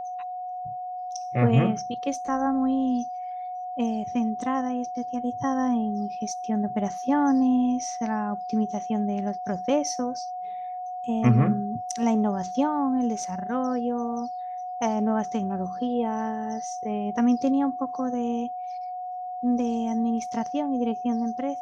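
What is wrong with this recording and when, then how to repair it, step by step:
whine 730 Hz -31 dBFS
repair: band-stop 730 Hz, Q 30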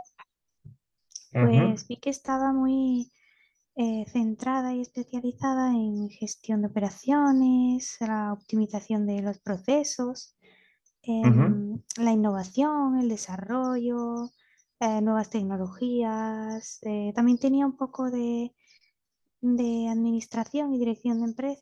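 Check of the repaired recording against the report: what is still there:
nothing left

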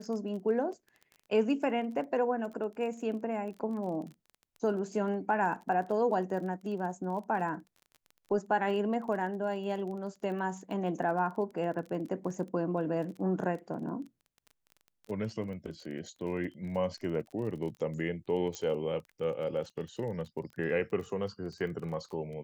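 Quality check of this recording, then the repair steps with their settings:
crackle 25 per s -41 dBFS
18.55 s: pop -23 dBFS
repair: de-click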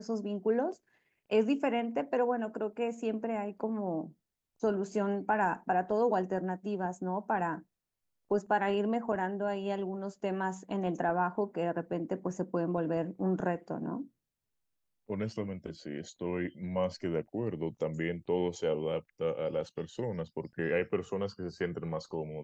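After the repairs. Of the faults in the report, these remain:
nothing left

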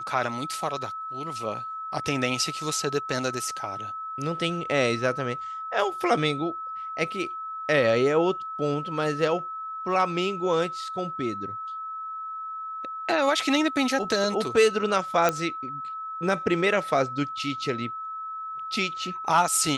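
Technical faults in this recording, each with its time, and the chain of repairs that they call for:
whine 1.3 kHz -32 dBFS
15.29 s: pop -9 dBFS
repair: de-click; band-stop 1.3 kHz, Q 30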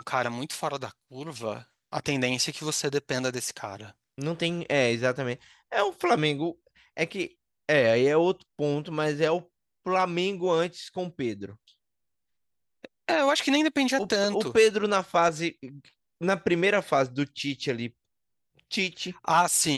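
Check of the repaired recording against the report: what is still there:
nothing left

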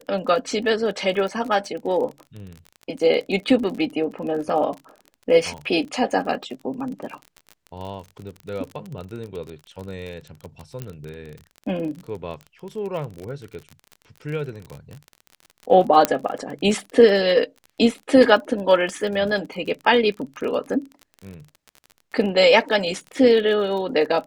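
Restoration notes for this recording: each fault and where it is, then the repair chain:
crackle 34 per s -30 dBFS
10.82 s: pop -17 dBFS
16.05 s: pop -2 dBFS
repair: de-click

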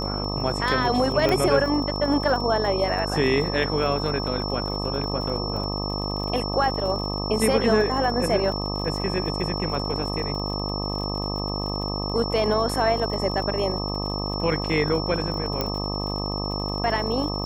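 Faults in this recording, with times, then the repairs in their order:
buzz 50 Hz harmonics 25 -29 dBFS
crackle 50 per s -32 dBFS
whine 5.4 kHz -31 dBFS
1.29 s: pop -10 dBFS
15.61 s: pop -10 dBFS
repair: de-click; band-stop 5.4 kHz, Q 30; de-hum 50 Hz, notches 25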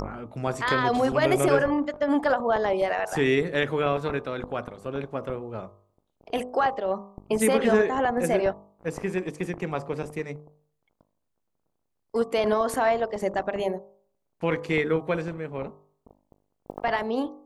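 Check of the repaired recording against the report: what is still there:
nothing left

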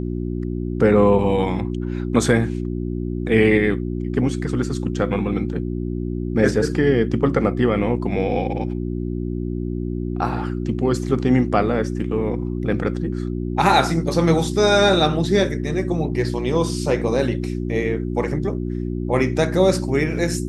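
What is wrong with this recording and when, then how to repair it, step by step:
hum 60 Hz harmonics 6 -25 dBFS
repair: de-hum 60 Hz, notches 6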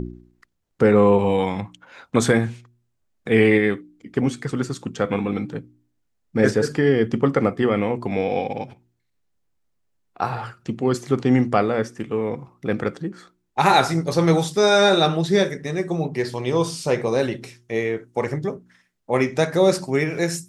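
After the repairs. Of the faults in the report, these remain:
nothing left

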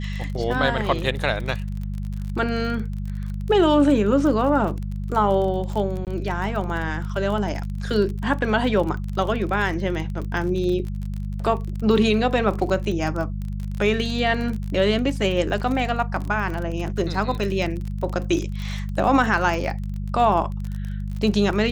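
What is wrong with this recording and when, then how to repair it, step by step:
crackle 34 per s -28 dBFS
hum 50 Hz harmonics 4 -28 dBFS
6.05–6.07 s: dropout 18 ms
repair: de-click; de-hum 50 Hz, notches 4; interpolate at 6.05 s, 18 ms

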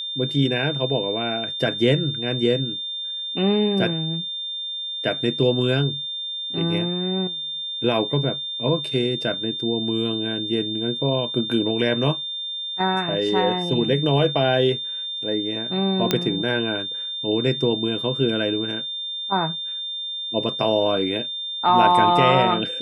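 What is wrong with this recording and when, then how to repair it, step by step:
whine 3.6 kHz -27 dBFS
16.11 s: pop -4 dBFS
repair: de-click; band-stop 3.6 kHz, Q 30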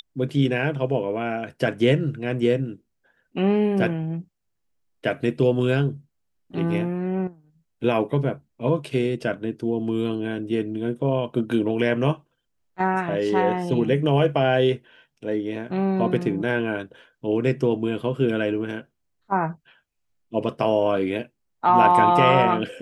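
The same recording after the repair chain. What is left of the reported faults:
nothing left

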